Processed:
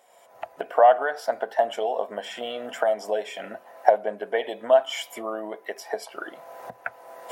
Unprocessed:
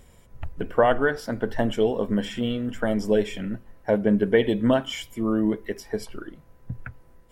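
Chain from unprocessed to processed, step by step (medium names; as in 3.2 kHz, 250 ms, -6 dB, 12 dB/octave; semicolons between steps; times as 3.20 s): recorder AGC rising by 33 dB/s; resonant high-pass 690 Hz, resonance Q 4.9; trim -5 dB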